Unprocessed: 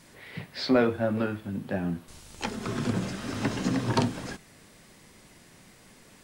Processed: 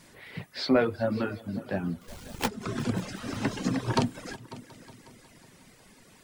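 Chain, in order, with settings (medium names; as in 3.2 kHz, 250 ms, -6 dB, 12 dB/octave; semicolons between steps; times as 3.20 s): 2.01–2.48 s: square wave that keeps the level; multi-head delay 182 ms, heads all three, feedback 50%, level -20.5 dB; reverb removal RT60 0.78 s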